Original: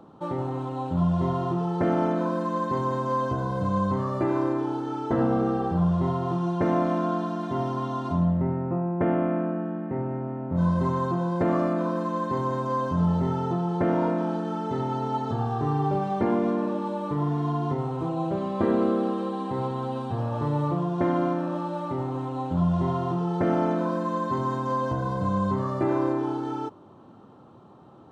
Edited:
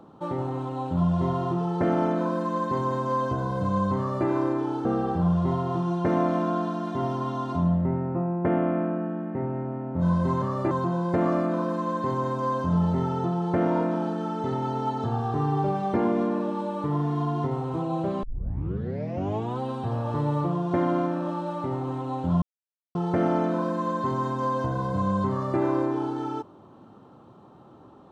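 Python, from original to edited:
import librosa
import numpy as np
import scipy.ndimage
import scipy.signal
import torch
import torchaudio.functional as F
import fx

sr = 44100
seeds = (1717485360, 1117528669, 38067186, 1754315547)

y = fx.edit(x, sr, fx.duplicate(start_s=3.98, length_s=0.29, to_s=10.98),
    fx.cut(start_s=4.85, length_s=0.56),
    fx.tape_start(start_s=18.5, length_s=1.37),
    fx.silence(start_s=22.69, length_s=0.53), tone=tone)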